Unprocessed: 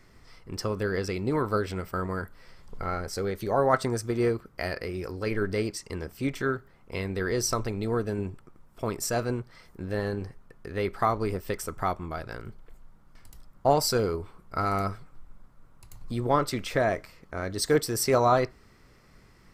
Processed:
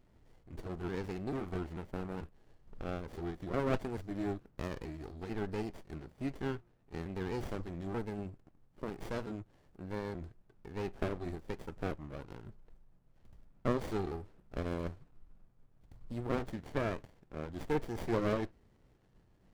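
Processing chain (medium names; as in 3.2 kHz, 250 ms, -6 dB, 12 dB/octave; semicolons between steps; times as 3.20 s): pitch shift switched off and on -2.5 st, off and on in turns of 441 ms; sliding maximum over 33 samples; trim -8 dB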